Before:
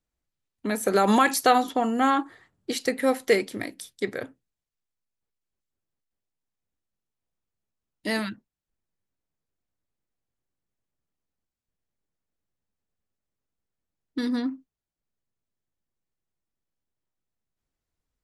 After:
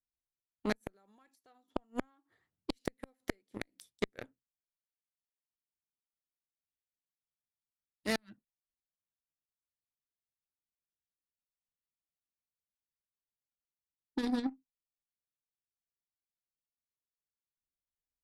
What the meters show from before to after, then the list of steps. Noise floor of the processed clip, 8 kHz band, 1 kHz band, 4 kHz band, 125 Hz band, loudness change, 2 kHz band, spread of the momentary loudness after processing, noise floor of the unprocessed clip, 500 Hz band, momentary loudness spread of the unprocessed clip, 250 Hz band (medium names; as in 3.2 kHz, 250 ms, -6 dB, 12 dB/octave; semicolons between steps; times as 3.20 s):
under -85 dBFS, -19.0 dB, -23.0 dB, -13.0 dB, -10.5 dB, -15.0 dB, -15.0 dB, 11 LU, under -85 dBFS, -16.5 dB, 17 LU, -12.0 dB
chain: inverted gate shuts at -16 dBFS, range -27 dB; Chebyshev shaper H 2 -17 dB, 3 -31 dB, 7 -19 dB, 8 -43 dB, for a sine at -12.5 dBFS; bass shelf 350 Hz +4 dB; trim -4 dB